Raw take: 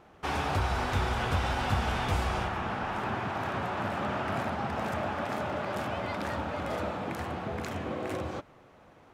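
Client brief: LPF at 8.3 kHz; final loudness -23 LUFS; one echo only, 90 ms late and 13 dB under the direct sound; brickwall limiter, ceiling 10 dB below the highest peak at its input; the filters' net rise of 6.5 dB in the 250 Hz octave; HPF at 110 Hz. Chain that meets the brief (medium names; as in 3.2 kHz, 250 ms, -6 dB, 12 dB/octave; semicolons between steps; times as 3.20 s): high-pass 110 Hz; low-pass 8.3 kHz; peaking EQ 250 Hz +8.5 dB; peak limiter -24 dBFS; delay 90 ms -13 dB; trim +10 dB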